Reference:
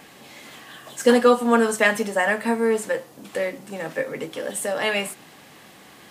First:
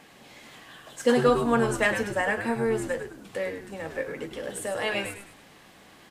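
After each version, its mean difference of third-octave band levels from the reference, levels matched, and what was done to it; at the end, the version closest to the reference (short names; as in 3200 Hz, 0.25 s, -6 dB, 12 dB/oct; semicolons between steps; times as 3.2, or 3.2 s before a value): 3.5 dB: high shelf 11000 Hz -7.5 dB; frequency-shifting echo 0.103 s, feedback 36%, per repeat -100 Hz, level -8 dB; gain -5.5 dB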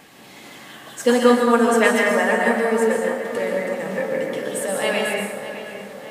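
5.0 dB: on a send: darkening echo 0.609 s, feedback 60%, low-pass 3500 Hz, level -11 dB; on the sum: plate-style reverb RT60 1.4 s, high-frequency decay 0.55×, pre-delay 0.11 s, DRR -0.5 dB; gain -1 dB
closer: first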